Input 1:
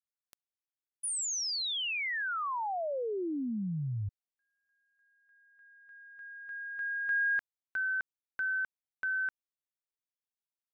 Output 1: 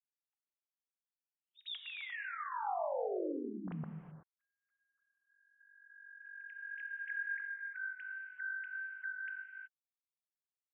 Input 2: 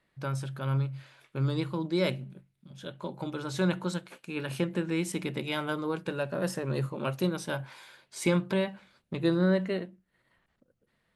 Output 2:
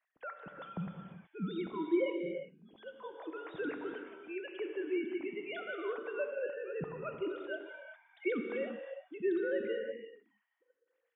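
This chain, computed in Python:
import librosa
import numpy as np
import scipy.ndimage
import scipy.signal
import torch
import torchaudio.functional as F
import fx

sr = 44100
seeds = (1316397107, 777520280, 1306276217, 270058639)

y = fx.sine_speech(x, sr)
y = fx.rev_gated(y, sr, seeds[0], gate_ms=400, shape='flat', drr_db=4.0)
y = y * 10.0 ** (-8.5 / 20.0)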